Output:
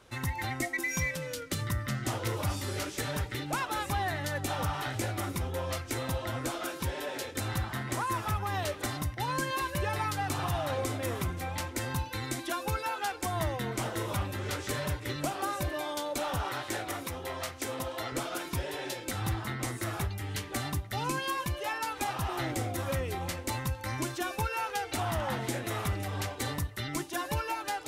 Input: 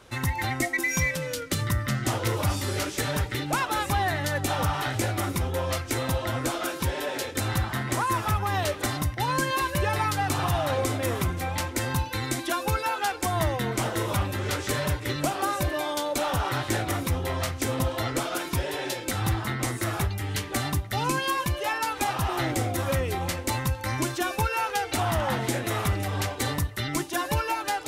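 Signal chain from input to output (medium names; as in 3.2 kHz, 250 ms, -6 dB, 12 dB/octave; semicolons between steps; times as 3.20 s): 16.50–18.12 s: tone controls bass -10 dB, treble 0 dB; trim -6 dB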